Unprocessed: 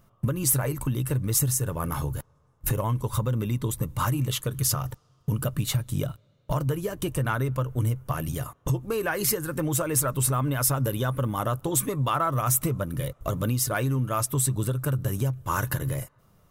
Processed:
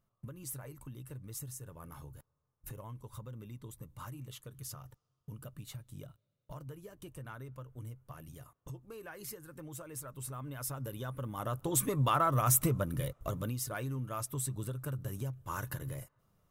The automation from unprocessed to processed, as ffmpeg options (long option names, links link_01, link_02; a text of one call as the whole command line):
ffmpeg -i in.wav -af "volume=-3.5dB,afade=type=in:start_time=10.08:duration=1.25:silence=0.421697,afade=type=in:start_time=11.33:duration=0.67:silence=0.354813,afade=type=out:start_time=12.73:duration=0.83:silence=0.375837" out.wav